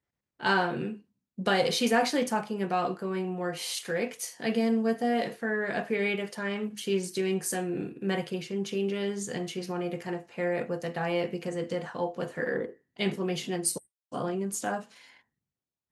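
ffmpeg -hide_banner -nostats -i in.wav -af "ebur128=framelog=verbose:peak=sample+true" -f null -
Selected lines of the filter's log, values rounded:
Integrated loudness:
  I:         -30.5 LUFS
  Threshold: -40.7 LUFS
Loudness range:
  LRA:         4.0 LU
  Threshold: -50.8 LUFS
  LRA low:   -32.7 LUFS
  LRA high:  -28.8 LUFS
Sample peak:
  Peak:      -12.1 dBFS
True peak:
  Peak:      -12.1 dBFS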